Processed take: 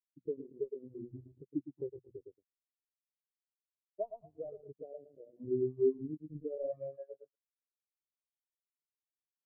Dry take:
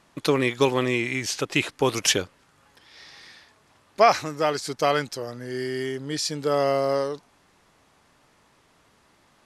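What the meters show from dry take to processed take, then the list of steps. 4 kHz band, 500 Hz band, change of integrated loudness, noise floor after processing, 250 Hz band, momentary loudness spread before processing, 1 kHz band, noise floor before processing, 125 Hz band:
under -40 dB, -13.0 dB, -15.5 dB, under -85 dBFS, -13.0 dB, 12 LU, under -30 dB, -61 dBFS, -17.5 dB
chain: median filter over 41 samples; on a send: feedback delay 110 ms, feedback 42%, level -4 dB; on the sum: compression 12:1, threshold -34 dBFS, peak gain reduction 18 dB; treble shelf 3.4 kHz +6.5 dB; word length cut 6-bit, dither none; peaking EQ 82 Hz +4 dB 2.8 oct; hum notches 60/120/180/240 Hz; spectral contrast expander 4:1; trim -2 dB

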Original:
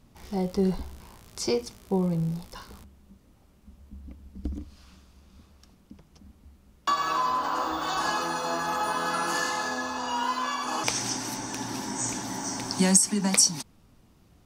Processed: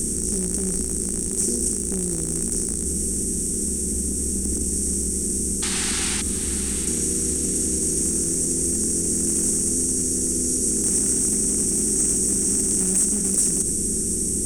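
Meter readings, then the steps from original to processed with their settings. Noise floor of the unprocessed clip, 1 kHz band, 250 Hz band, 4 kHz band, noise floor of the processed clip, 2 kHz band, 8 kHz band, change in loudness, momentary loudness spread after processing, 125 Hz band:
-59 dBFS, -18.0 dB, +5.0 dB, -0.5 dB, -26 dBFS, -6.0 dB, +12.0 dB, +6.5 dB, 5 LU, +4.0 dB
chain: spectral levelling over time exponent 0.2; inverse Chebyshev band-stop 730–3500 Hz, stop band 50 dB; painted sound noise, 5.62–6.22 s, 730–9700 Hz -27 dBFS; echo that smears into a reverb 721 ms, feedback 44%, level -11 dB; waveshaping leveller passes 2; treble shelf 8 kHz -10.5 dB; hum notches 50/100/150/200 Hz; peak limiter -9.5 dBFS, peak gain reduction 4.5 dB; fifteen-band graphic EQ 160 Hz -10 dB, 1 kHz -6 dB, 10 kHz +8 dB; trim -5.5 dB

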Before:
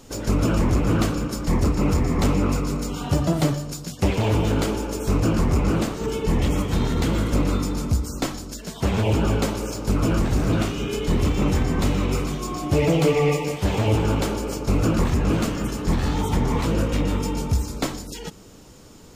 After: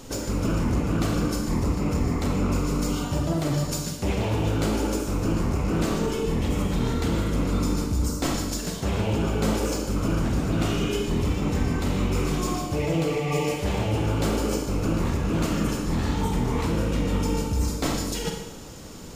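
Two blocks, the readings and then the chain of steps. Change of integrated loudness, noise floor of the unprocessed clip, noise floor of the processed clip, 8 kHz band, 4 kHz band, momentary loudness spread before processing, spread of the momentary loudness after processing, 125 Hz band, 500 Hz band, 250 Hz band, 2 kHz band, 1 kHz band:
-3.0 dB, -43 dBFS, -34 dBFS, 0.0 dB, -1.5 dB, 6 LU, 2 LU, -3.0 dB, -3.0 dB, -2.0 dB, -2.5 dB, -2.5 dB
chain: reverse; compression 10:1, threshold -27 dBFS, peak gain reduction 12.5 dB; reverse; Schroeder reverb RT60 0.94 s, combs from 33 ms, DRR 2.5 dB; trim +4 dB

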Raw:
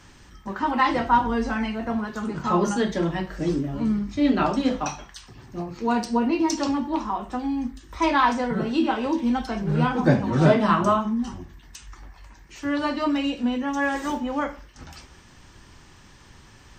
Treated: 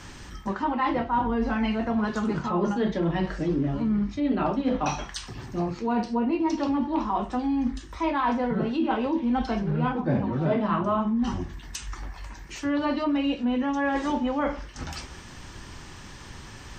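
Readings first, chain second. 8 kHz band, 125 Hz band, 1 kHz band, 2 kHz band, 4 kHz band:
-4.0 dB, -3.0 dB, -3.5 dB, -5.0 dB, -4.0 dB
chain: low-pass that closes with the level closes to 2.7 kHz, closed at -20 dBFS; dynamic bell 1.6 kHz, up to -4 dB, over -37 dBFS, Q 1.2; reverse; compression 5:1, threshold -30 dBFS, peak gain reduction 16 dB; reverse; trim +7 dB

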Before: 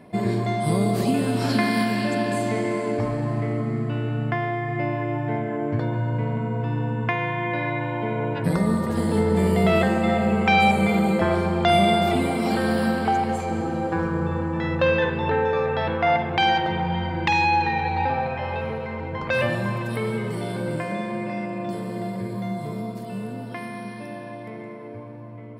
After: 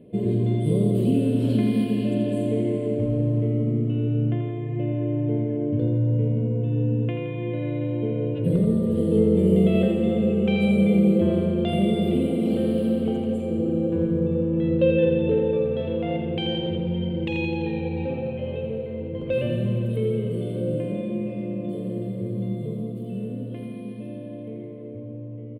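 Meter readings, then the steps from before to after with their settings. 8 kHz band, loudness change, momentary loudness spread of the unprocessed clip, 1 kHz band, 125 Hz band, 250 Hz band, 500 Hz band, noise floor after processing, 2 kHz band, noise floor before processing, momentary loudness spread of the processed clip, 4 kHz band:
under -10 dB, -0.5 dB, 12 LU, -18.0 dB, +2.0 dB, +2.0 dB, 0.0 dB, -35 dBFS, -13.5 dB, -36 dBFS, 12 LU, -6.5 dB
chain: FFT filter 340 Hz 0 dB, 500 Hz +4 dB, 800 Hz -22 dB, 1.9 kHz -22 dB, 3 kHz -4 dB, 5.4 kHz -27 dB, 8.7 kHz -11 dB; feedback delay 85 ms, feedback 58%, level -7 dB

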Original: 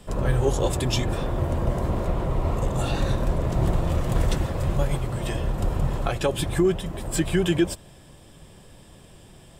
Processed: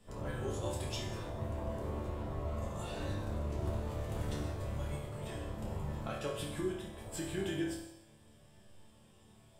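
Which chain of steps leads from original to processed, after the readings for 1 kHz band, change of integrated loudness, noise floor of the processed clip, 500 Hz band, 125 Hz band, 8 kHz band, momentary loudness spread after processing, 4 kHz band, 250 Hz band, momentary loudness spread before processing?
-13.5 dB, -14.0 dB, -62 dBFS, -13.5 dB, -14.0 dB, -13.5 dB, 4 LU, -13.0 dB, -14.0 dB, 5 LU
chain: chord resonator D2 sus4, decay 0.8 s; trim +3.5 dB

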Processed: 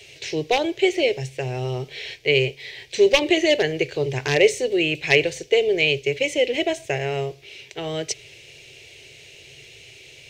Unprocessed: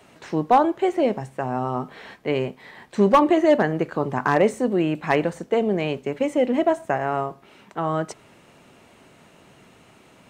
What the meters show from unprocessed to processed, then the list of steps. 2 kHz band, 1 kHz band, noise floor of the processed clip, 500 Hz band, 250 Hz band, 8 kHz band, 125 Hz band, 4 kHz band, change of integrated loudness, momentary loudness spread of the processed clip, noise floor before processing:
+7.5 dB, -9.5 dB, -47 dBFS, +1.5 dB, -4.5 dB, no reading, +1.0 dB, +14.5 dB, +1.0 dB, 13 LU, -53 dBFS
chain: FFT filter 140 Hz 0 dB, 200 Hz -28 dB, 410 Hz +1 dB, 1.2 kHz -23 dB, 2.3 kHz +9 dB, 6 kHz +10 dB, 8.8 kHz 0 dB; trim +5 dB

